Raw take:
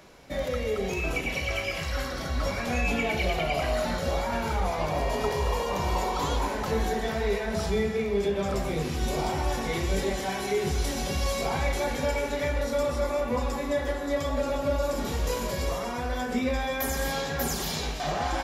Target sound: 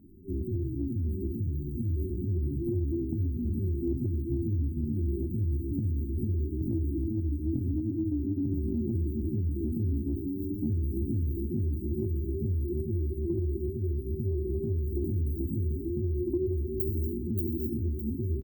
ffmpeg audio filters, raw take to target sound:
-filter_complex "[0:a]afftfilt=real='re*(1-between(b*sr/4096,270,11000))':imag='im*(1-between(b*sr/4096,270,11000))':win_size=4096:overlap=0.75,acompressor=threshold=-33dB:ratio=4,asplit=2[a][b];[b]aecho=0:1:1199|2398|3597|4796:0.282|0.121|0.0521|0.0224[c];[a][c]amix=inputs=2:normalize=0,asetrate=64194,aresample=44100,atempo=0.686977,volume=6dB"

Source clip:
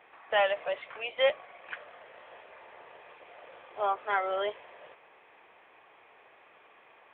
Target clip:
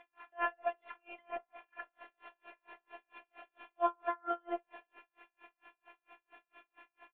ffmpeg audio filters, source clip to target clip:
-filter_complex "[0:a]afftfilt=real='hypot(re,im)*cos(PI*b)':imag='0':win_size=512:overlap=0.75,bandreject=f=60:t=h:w=6,bandreject=f=120:t=h:w=6,bandreject=f=180:t=h:w=6,bandreject=f=240:t=h:w=6,bandreject=f=300:t=h:w=6,bandreject=f=360:t=h:w=6,bandreject=f=420:t=h:w=6,acrossover=split=1700[a][b];[b]acompressor=threshold=-55dB:ratio=8[c];[a][c]amix=inputs=2:normalize=0,aecho=1:1:4.1:0.4,asplit=2[d][e];[e]adelay=66,lowpass=f=2.1k:p=1,volume=-3dB,asplit=2[f][g];[g]adelay=66,lowpass=f=2.1k:p=1,volume=0.29,asplit=2[h][i];[i]adelay=66,lowpass=f=2.1k:p=1,volume=0.29,asplit=2[j][k];[k]adelay=66,lowpass=f=2.1k:p=1,volume=0.29[l];[f][h][j][l]amix=inputs=4:normalize=0[m];[d][m]amix=inputs=2:normalize=0,aeval=exprs='val(0)*pow(10,-39*(0.5-0.5*cos(2*PI*4.4*n/s))/20)':c=same,volume=5.5dB"

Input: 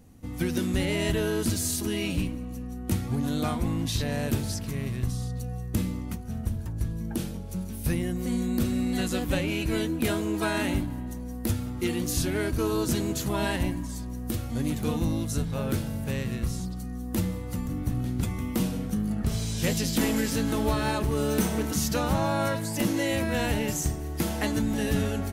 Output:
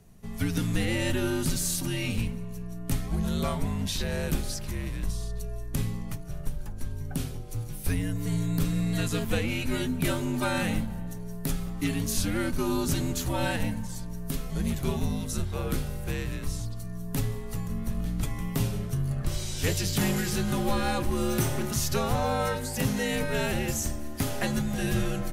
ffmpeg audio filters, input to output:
-af "bandreject=f=109.2:t=h:w=4,bandreject=f=218.4:t=h:w=4,bandreject=f=327.6:t=h:w=4,bandreject=f=436.8:t=h:w=4,bandreject=f=546:t=h:w=4,afreqshift=-72"

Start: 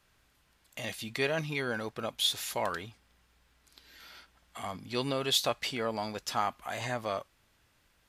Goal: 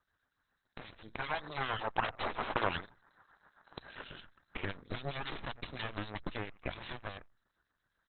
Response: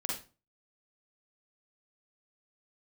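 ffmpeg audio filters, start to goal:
-filter_complex "[0:a]firequalizer=gain_entry='entry(570,0);entry(1700,11);entry(2600,-22);entry(4100,9);entry(5900,10);entry(9900,-27)':delay=0.05:min_phase=1,aecho=1:1:87:0.0794,alimiter=limit=-20.5dB:level=0:latency=1:release=113,aresample=32000,aresample=44100,aeval=exprs='0.1*(cos(1*acos(clip(val(0)/0.1,-1,1)))-cos(1*PI/2))+0.0398*(cos(3*acos(clip(val(0)/0.1,-1,1)))-cos(3*PI/2))+0.0398*(cos(4*acos(clip(val(0)/0.1,-1,1)))-cos(4*PI/2))+0.00282*(cos(8*acos(clip(val(0)/0.1,-1,1)))-cos(8*PI/2))':c=same,acompressor=threshold=-43dB:ratio=6,asettb=1/sr,asplit=3[a][b][c];[a]atrim=end=1.134[d];[b]atrim=start=1.13:end=4.03,asetpts=PTS-STARTPTS,afade=t=in:d=0.004:c=qsin,afade=t=out:st=2.896:d=0.004:c=qsin,equalizer=f=890:t=o:w=2.5:g=12[e];[c]atrim=start=4.026[f];[d][e]acrossfade=d=0.004:c1=hsin:c2=qsin[g];[g][f]acrossfade=d=0.004:c1=qsin:c2=hsin,bandreject=f=60:t=h:w=6,bandreject=f=120:t=h:w=6,dynaudnorm=f=310:g=11:m=9dB,acrossover=split=2300[h][i];[h]aeval=exprs='val(0)*(1-0.7/2+0.7/2*cos(2*PI*7.5*n/s))':c=same[j];[i]aeval=exprs='val(0)*(1-0.7/2-0.7/2*cos(2*PI*7.5*n/s))':c=same[k];[j][k]amix=inputs=2:normalize=0,volume=4.5dB" -ar 48000 -c:a libopus -b:a 8k

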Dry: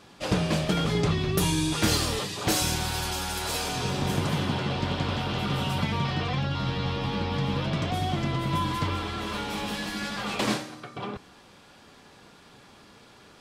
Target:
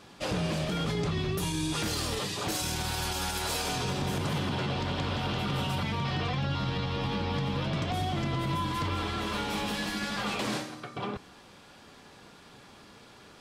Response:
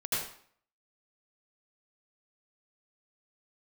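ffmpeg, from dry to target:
-af "alimiter=limit=-22dB:level=0:latency=1:release=51"

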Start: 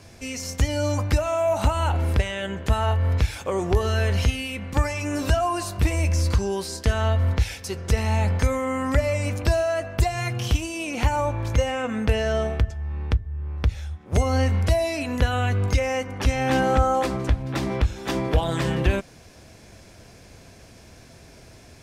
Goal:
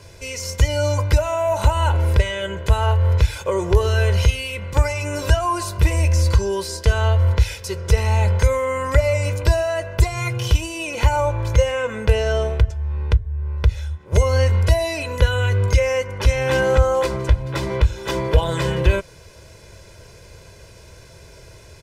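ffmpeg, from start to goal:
-af "aecho=1:1:2:0.76,volume=1.5dB"

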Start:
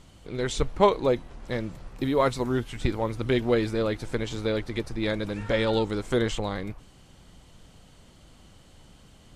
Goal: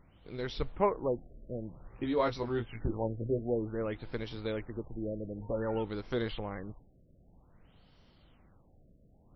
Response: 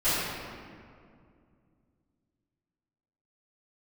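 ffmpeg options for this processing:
-filter_complex "[0:a]asettb=1/sr,asplit=3[a][b][c];[a]atrim=end=1.884[d];[b]atrim=start=1.88:end=3.39,asetpts=PTS-STARTPTS,afade=t=in:d=0.004:c=qsin,afade=t=out:st=1.506:d=0.004:c=qsin,asplit=2[e][f];[f]adelay=18,volume=-3.5dB[g];[e][g]amix=inputs=2:normalize=0,atrim=end_sample=66591[h];[c]atrim=start=3.386[i];[d][h]acrossfade=d=0.004:c1=hsin:c2=qsin[j];[j][i]acrossfade=d=0.004:c1=qsin:c2=hsin,afftfilt=real='re*lt(b*sr/1024,660*pow(5900/660,0.5+0.5*sin(2*PI*0.53*pts/sr)))':imag='im*lt(b*sr/1024,660*pow(5900/660,0.5+0.5*sin(2*PI*0.53*pts/sr)))':win_size=1024:overlap=0.75,volume=-8.5dB"

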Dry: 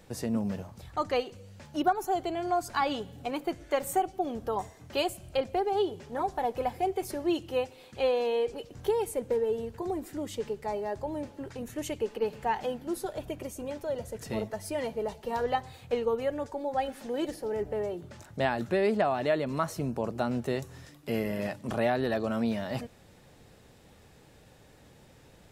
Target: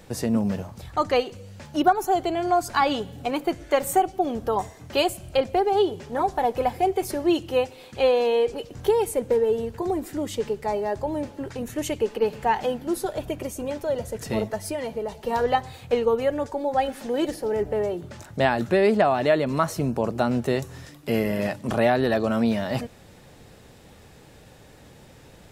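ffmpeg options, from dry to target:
-filter_complex "[0:a]asplit=3[a][b][c];[a]afade=t=out:st=14.58:d=0.02[d];[b]acompressor=threshold=-33dB:ratio=6,afade=t=in:st=14.58:d=0.02,afade=t=out:st=15.19:d=0.02[e];[c]afade=t=in:st=15.19:d=0.02[f];[d][e][f]amix=inputs=3:normalize=0,volume=7dB"

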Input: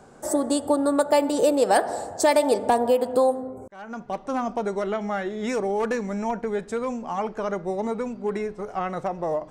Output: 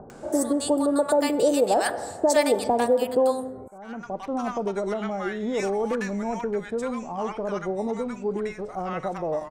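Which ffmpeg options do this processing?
-filter_complex "[0:a]acompressor=mode=upward:threshold=-36dB:ratio=2.5,acrossover=split=940[a][b];[b]adelay=100[c];[a][c]amix=inputs=2:normalize=0"

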